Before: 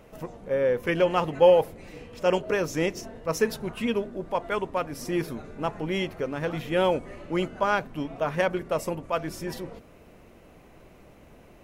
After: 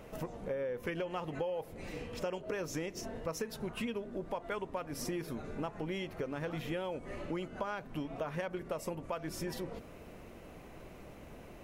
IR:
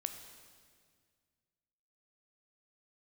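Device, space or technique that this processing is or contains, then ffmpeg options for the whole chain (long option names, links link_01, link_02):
serial compression, leveller first: -af "acompressor=threshold=-25dB:ratio=3,acompressor=threshold=-37dB:ratio=4,volume=1dB"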